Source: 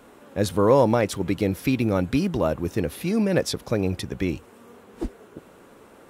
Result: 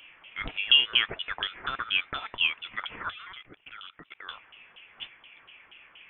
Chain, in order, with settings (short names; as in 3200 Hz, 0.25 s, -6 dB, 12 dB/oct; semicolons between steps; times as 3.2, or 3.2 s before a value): LFO high-pass saw up 4.2 Hz 790–2800 Hz; 3.1–4.29 level quantiser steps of 22 dB; inverted band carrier 3800 Hz